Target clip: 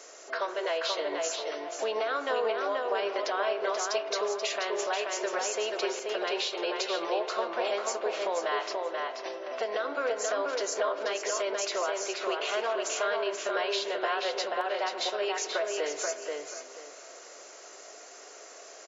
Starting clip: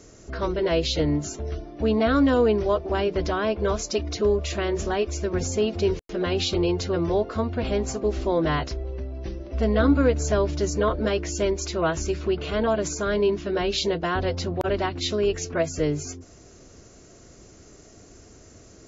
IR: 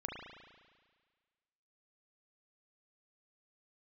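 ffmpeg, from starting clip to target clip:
-filter_complex "[0:a]highpass=frequency=550:width=0.5412,highpass=frequency=550:width=1.3066,alimiter=limit=-21.5dB:level=0:latency=1:release=356,acompressor=threshold=-37dB:ratio=2.5,asplit=2[link_01][link_02];[link_02]adelay=483,lowpass=frequency=4300:poles=1,volume=-3dB,asplit=2[link_03][link_04];[link_04]adelay=483,lowpass=frequency=4300:poles=1,volume=0.25,asplit=2[link_05][link_06];[link_06]adelay=483,lowpass=frequency=4300:poles=1,volume=0.25,asplit=2[link_07][link_08];[link_08]adelay=483,lowpass=frequency=4300:poles=1,volume=0.25[link_09];[link_01][link_03][link_05][link_07][link_09]amix=inputs=5:normalize=0,asplit=2[link_10][link_11];[1:a]atrim=start_sample=2205,lowpass=5600[link_12];[link_11][link_12]afir=irnorm=-1:irlink=0,volume=-7dB[link_13];[link_10][link_13]amix=inputs=2:normalize=0,volume=4dB"

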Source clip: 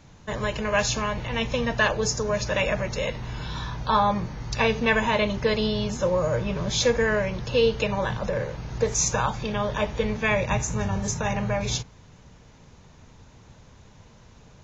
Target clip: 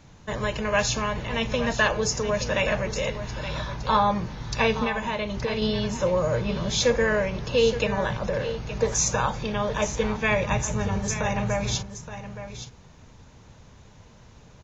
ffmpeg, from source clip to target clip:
ffmpeg -i in.wav -filter_complex "[0:a]asettb=1/sr,asplit=3[link_01][link_02][link_03];[link_01]atrim=end=4.844[link_04];[link_02]atrim=start=4.84:end=5.62,asetpts=PTS-STARTPTS,afade=type=in:duration=0.004:curve=qsin,afade=type=out:start_time=0.776:duration=0.004:curve=qsin,acompressor=threshold=-25dB:ratio=6[link_05];[link_03]atrim=start=5.616[link_06];[link_04][link_05]acrossfade=duration=0.004:curve1=hsin:curve2=qsin[link_07];[link_07][link_06]acrossfade=duration=0.004:curve1=qsin:curve2=hsin,aecho=1:1:871:0.266" out.wav

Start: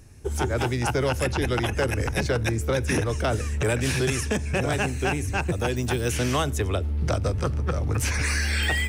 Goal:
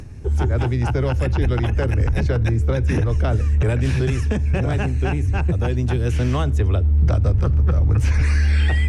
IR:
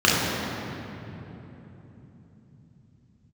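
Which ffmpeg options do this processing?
-filter_complex "[0:a]aemphasis=mode=reproduction:type=bsi,acrossover=split=110[link_01][link_02];[link_02]acompressor=mode=upward:threshold=-30dB:ratio=2.5[link_03];[link_01][link_03]amix=inputs=2:normalize=0,volume=-1.5dB"

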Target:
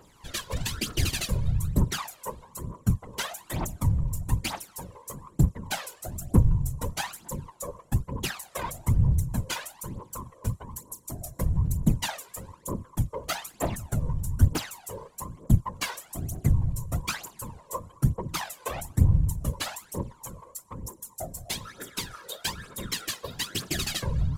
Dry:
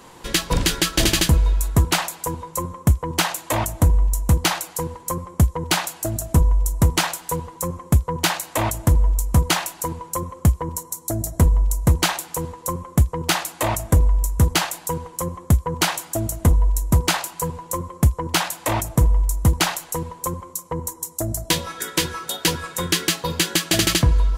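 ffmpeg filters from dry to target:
ffmpeg -i in.wav -af "aphaser=in_gain=1:out_gain=1:delay=2.1:decay=0.76:speed=1.1:type=triangular,afftfilt=real='hypot(re,im)*cos(2*PI*random(0))':imag='hypot(re,im)*sin(2*PI*random(1))':win_size=512:overlap=0.75,volume=-9dB" out.wav

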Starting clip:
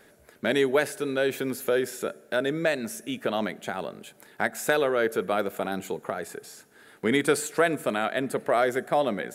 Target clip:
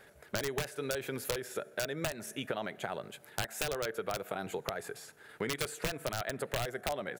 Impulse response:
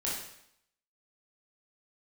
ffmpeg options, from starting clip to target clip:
-af "bass=frequency=250:gain=-11,treble=frequency=4000:gain=-4,aeval=exprs='(mod(5.62*val(0)+1,2)-1)/5.62':channel_layout=same,atempo=1.3,lowshelf=frequency=180:width_type=q:width=1.5:gain=9.5,acompressor=threshold=-32dB:ratio=6"

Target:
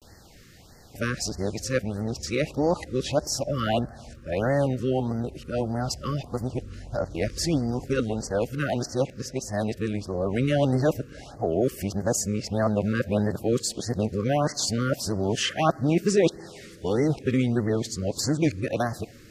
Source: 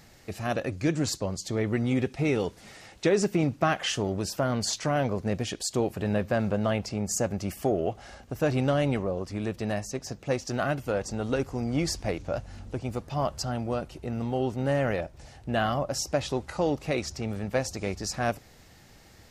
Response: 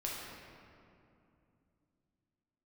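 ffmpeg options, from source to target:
-filter_complex "[0:a]areverse,asplit=2[link_01][link_02];[1:a]atrim=start_sample=2205,lowpass=8100[link_03];[link_02][link_03]afir=irnorm=-1:irlink=0,volume=-23dB[link_04];[link_01][link_04]amix=inputs=2:normalize=0,afftfilt=real='re*(1-between(b*sr/1024,750*pow(3000/750,0.5+0.5*sin(2*PI*1.6*pts/sr))/1.41,750*pow(3000/750,0.5+0.5*sin(2*PI*1.6*pts/sr))*1.41))':imag='im*(1-between(b*sr/1024,750*pow(3000/750,0.5+0.5*sin(2*PI*1.6*pts/sr))/1.41,750*pow(3000/750,0.5+0.5*sin(2*PI*1.6*pts/sr))*1.41))':win_size=1024:overlap=0.75,volume=2.5dB"

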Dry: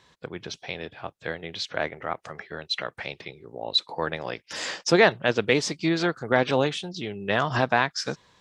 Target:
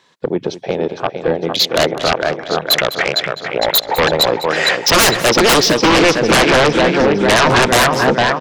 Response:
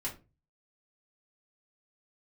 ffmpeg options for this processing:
-filter_complex "[0:a]afwtdn=0.0224,highpass=190,asplit=2[link_01][link_02];[link_02]aecho=0:1:456|912|1368|1824|2280|2736:0.355|0.185|0.0959|0.0499|0.0259|0.0135[link_03];[link_01][link_03]amix=inputs=2:normalize=0,aeval=exprs='0.631*sin(PI/2*10*val(0)/0.631)':channel_layout=same,asplit=2[link_04][link_05];[link_05]aecho=0:1:204:0.178[link_06];[link_04][link_06]amix=inputs=2:normalize=0,volume=-3dB"

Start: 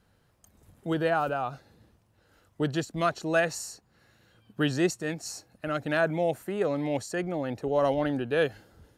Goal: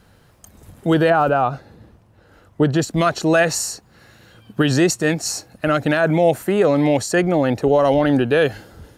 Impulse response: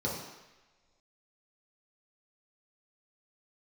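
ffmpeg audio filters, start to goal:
-filter_complex "[0:a]asettb=1/sr,asplit=3[link_01][link_02][link_03];[link_01]atrim=end=1.104[link_04];[link_02]atrim=start=1.1:end=2.82,asetpts=PTS-STARTPTS,afade=type=in:duration=0.004:curve=qsin,afade=type=out:start_time=1.716:duration=0.004:curve=qsin,highshelf=frequency=2600:gain=-9.5[link_05];[link_03]atrim=start=2.816[link_06];[link_04][link_05]acrossfade=duration=0.004:curve1=hsin:curve2=qsin[link_07];[link_07][link_06]acrossfade=duration=0.004:curve1=qsin:curve2=hsin,alimiter=level_in=19.5dB:limit=-1dB:release=50:level=0:latency=1,volume=-5.5dB"

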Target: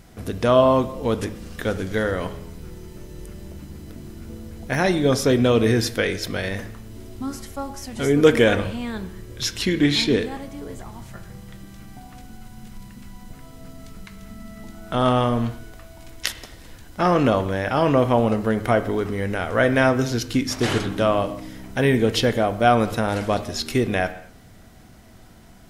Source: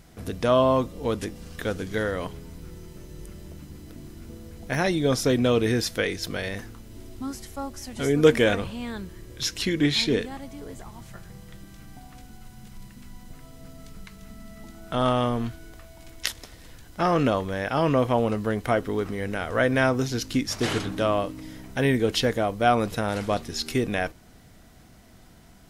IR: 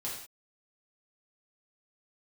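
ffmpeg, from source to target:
-filter_complex "[0:a]asplit=2[link_01][link_02];[1:a]atrim=start_sample=2205,asetrate=34839,aresample=44100,lowpass=3000[link_03];[link_02][link_03]afir=irnorm=-1:irlink=0,volume=-11.5dB[link_04];[link_01][link_04]amix=inputs=2:normalize=0,volume=2.5dB"

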